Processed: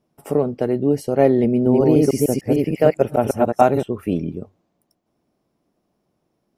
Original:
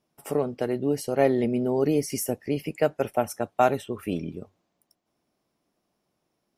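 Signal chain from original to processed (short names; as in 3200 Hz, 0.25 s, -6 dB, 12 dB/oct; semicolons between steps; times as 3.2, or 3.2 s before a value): 1.51–3.83 reverse delay 0.15 s, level -0.5 dB; tilt shelf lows +5 dB, about 940 Hz; gain +3.5 dB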